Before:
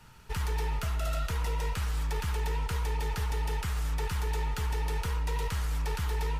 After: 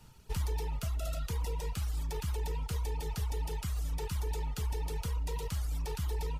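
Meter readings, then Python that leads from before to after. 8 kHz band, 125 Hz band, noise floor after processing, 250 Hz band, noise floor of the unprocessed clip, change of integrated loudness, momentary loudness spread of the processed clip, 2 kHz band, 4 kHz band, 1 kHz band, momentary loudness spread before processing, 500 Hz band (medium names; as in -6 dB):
-2.5 dB, -3.0 dB, -43 dBFS, -3.0 dB, -36 dBFS, -4.0 dB, 1 LU, -10.5 dB, -5.0 dB, -7.5 dB, 1 LU, -3.0 dB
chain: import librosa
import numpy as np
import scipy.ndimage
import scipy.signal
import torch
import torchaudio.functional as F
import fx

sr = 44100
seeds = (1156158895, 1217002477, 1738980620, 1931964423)

y = fx.dereverb_blind(x, sr, rt60_s=1.1)
y = fx.peak_eq(y, sr, hz=1600.0, db=-10.0, octaves=1.6)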